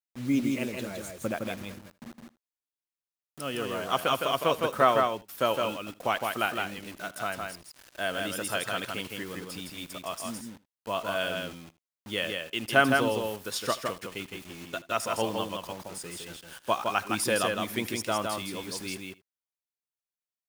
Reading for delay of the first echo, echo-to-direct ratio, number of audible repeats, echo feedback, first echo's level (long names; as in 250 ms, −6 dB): 79 ms, −4.0 dB, 3, repeats not evenly spaced, −20.5 dB